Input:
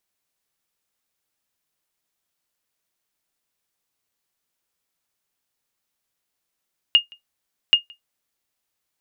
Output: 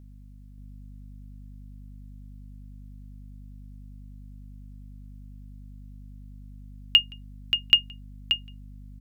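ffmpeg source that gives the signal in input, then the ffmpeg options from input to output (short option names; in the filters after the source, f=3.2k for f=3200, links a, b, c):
-f lavfi -i "aevalsrc='0.562*(sin(2*PI*2840*mod(t,0.78))*exp(-6.91*mod(t,0.78)/0.13)+0.0335*sin(2*PI*2840*max(mod(t,0.78)-0.17,0))*exp(-6.91*max(mod(t,0.78)-0.17,0)/0.13))':d=1.56:s=44100"
-filter_complex "[0:a]highpass=f=640:p=1,aeval=exprs='val(0)+0.00501*(sin(2*PI*50*n/s)+sin(2*PI*2*50*n/s)/2+sin(2*PI*3*50*n/s)/3+sin(2*PI*4*50*n/s)/4+sin(2*PI*5*50*n/s)/5)':c=same,asplit=2[a][b];[b]aecho=0:1:580:0.447[c];[a][c]amix=inputs=2:normalize=0"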